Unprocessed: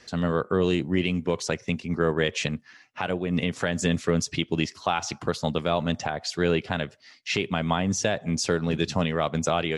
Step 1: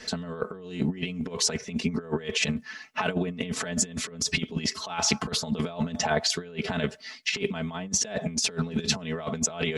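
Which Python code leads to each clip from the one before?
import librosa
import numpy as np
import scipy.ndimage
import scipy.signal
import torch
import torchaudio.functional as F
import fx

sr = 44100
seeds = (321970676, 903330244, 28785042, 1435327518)

y = x + 0.95 * np.pad(x, (int(4.6 * sr / 1000.0), 0))[:len(x)]
y = fx.over_compress(y, sr, threshold_db=-28.0, ratio=-0.5)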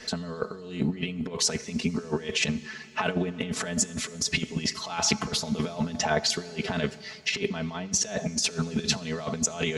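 y = fx.rev_fdn(x, sr, rt60_s=3.3, lf_ratio=1.0, hf_ratio=0.95, size_ms=47.0, drr_db=16.5)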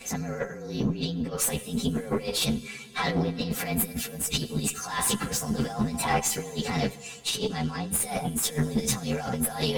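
y = fx.partial_stretch(x, sr, pct=115)
y = fx.tube_stage(y, sr, drive_db=23.0, bias=0.55)
y = y * librosa.db_to_amplitude(7.0)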